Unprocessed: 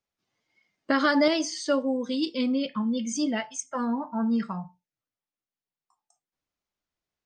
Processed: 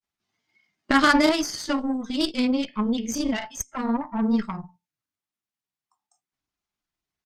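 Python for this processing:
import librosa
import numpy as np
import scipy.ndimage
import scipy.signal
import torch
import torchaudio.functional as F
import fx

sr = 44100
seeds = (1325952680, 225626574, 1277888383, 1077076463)

y = fx.peak_eq(x, sr, hz=520.0, db=-11.5, octaves=0.38)
y = fx.cheby_harmonics(y, sr, harmonics=(3, 6, 7), levels_db=(-17, -22, -43), full_scale_db=-13.0)
y = fx.granulator(y, sr, seeds[0], grain_ms=100.0, per_s=20.0, spray_ms=18.0, spread_st=0)
y = y * librosa.db_to_amplitude(8.5)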